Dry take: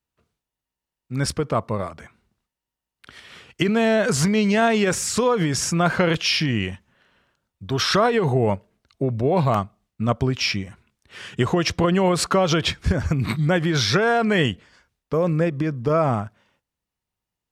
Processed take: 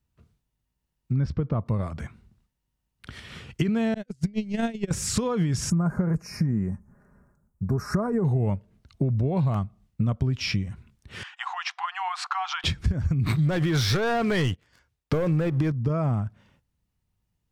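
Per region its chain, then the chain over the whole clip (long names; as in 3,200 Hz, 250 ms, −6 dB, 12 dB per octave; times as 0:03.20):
0:01.13–0:01.66: low-pass filter 5,800 Hz 24 dB per octave + high-shelf EQ 2,200 Hz −11 dB
0:03.94–0:04.91: noise gate −17 dBFS, range −47 dB + parametric band 1,100 Hz −11.5 dB 1.1 octaves + transient designer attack +6 dB, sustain −1 dB
0:05.70–0:08.25: Butterworth band-reject 3,300 Hz, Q 0.5 + comb filter 4.9 ms, depth 42%
0:11.23–0:12.64: linear-phase brick-wall high-pass 720 Hz + head-to-tape spacing loss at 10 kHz 21 dB
0:13.26–0:15.72: high-pass filter 130 Hz 6 dB per octave + parametric band 200 Hz −11.5 dB 0.69 octaves + leveller curve on the samples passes 3
whole clip: bass and treble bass +14 dB, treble 0 dB; downward compressor 4 to 1, threshold −24 dBFS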